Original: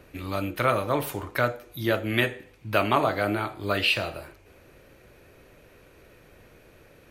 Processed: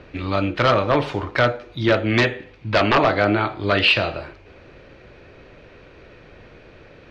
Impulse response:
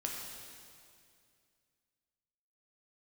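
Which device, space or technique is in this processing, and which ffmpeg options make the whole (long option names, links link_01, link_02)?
synthesiser wavefolder: -af "aeval=exprs='0.15*(abs(mod(val(0)/0.15+3,4)-2)-1)':channel_layout=same,lowpass=frequency=4800:width=0.5412,lowpass=frequency=4800:width=1.3066,volume=8dB"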